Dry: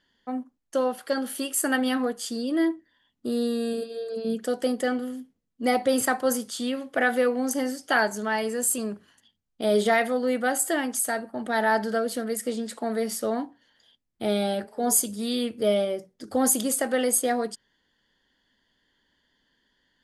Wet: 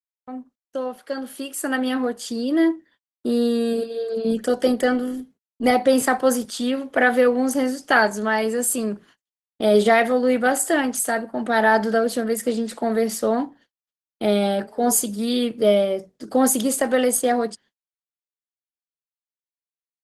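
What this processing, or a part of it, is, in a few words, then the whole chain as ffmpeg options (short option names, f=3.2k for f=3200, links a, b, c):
video call: -af "highpass=f=120:w=0.5412,highpass=f=120:w=1.3066,highshelf=f=5.3k:g=-3.5,dynaudnorm=f=130:g=31:m=13dB,agate=range=-58dB:threshold=-45dB:ratio=16:detection=peak,volume=-3dB" -ar 48000 -c:a libopus -b:a 16k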